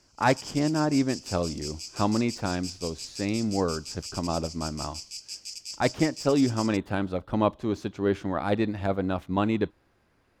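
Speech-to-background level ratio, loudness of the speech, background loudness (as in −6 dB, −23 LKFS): 9.5 dB, −28.0 LKFS, −37.5 LKFS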